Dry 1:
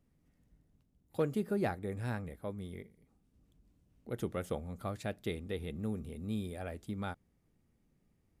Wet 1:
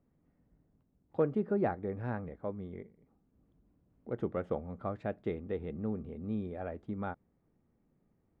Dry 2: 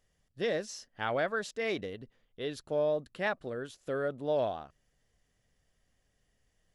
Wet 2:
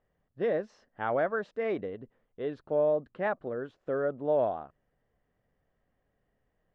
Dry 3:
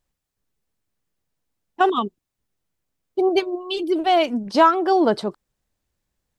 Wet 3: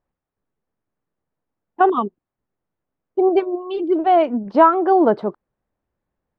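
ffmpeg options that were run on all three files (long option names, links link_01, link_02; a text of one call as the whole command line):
ffmpeg -i in.wav -af "lowpass=1300,lowshelf=frequency=130:gain=-9,volume=4dB" out.wav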